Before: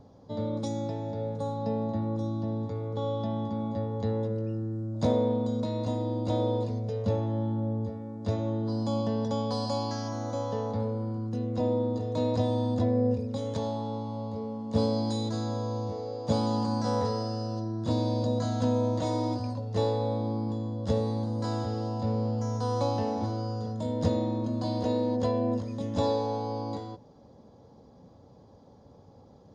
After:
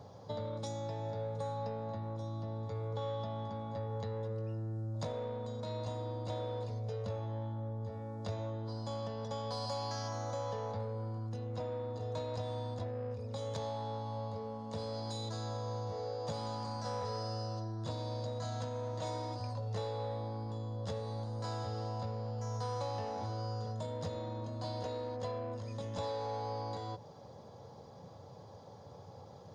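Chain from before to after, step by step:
high-pass filter 91 Hz 24 dB per octave
in parallel at −3.5 dB: soft clipping −31 dBFS, distortion −9 dB
on the sum: downward compressor, threshold −35 dBFS, peak gain reduction 15 dB
parametric band 260 Hz −14 dB 1 octave
level +2 dB

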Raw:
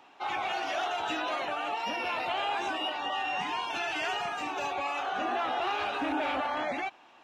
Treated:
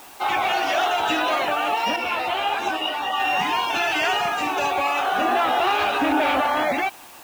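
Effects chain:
in parallel at −5 dB: bit-depth reduction 8 bits, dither triangular
0:01.96–0:03.20: on the sum: string-ensemble chorus
level +6.5 dB

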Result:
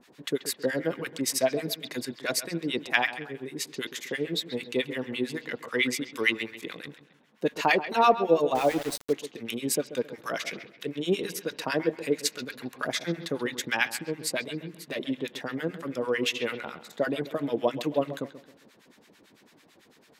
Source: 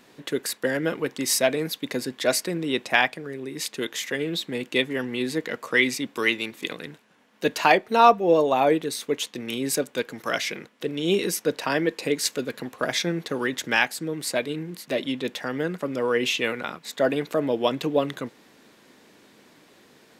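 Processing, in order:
two-band tremolo in antiphase 9 Hz, depth 100%, crossover 1,000 Hz
bucket-brigade delay 134 ms, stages 4,096, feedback 36%, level −13.5 dB
0:08.55–0:09.13: centre clipping without the shift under −33 dBFS

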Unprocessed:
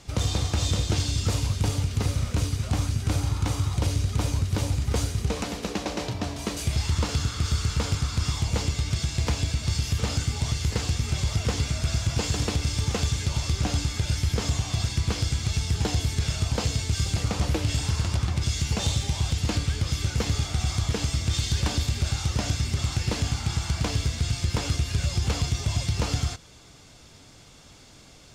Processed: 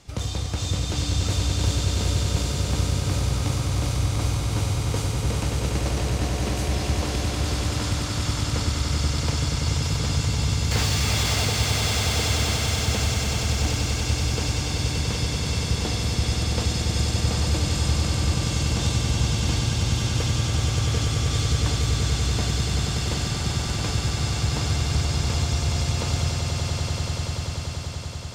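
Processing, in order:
0:10.71–0:11.45: mid-hump overdrive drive 30 dB, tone 5,700 Hz, clips at −16.5 dBFS
echo that builds up and dies away 96 ms, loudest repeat 8, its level −7 dB
level −3 dB

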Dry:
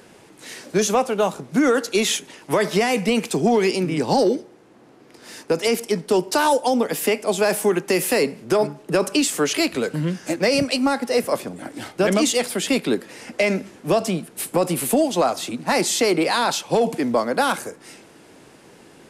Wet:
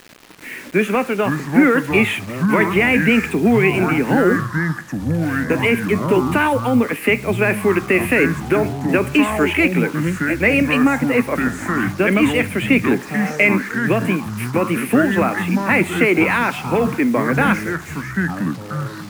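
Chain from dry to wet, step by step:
drawn EQ curve 110 Hz 0 dB, 250 Hz +10 dB, 720 Hz −1 dB, 2,400 Hz +15 dB, 5,200 Hz −26 dB, 8,900 Hz −5 dB
bit reduction 6 bits
delay with pitch and tempo change per echo 204 ms, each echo −6 semitones, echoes 3, each echo −6 dB
level −3 dB

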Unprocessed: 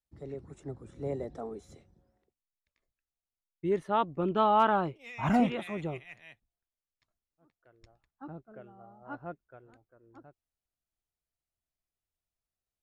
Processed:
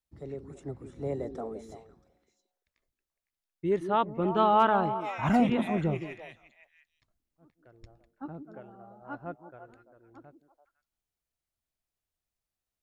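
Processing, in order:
0:05.49–0:08.26: low-shelf EQ 410 Hz +8 dB
echo through a band-pass that steps 169 ms, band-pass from 280 Hz, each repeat 1.4 octaves, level −6 dB
level +1.5 dB

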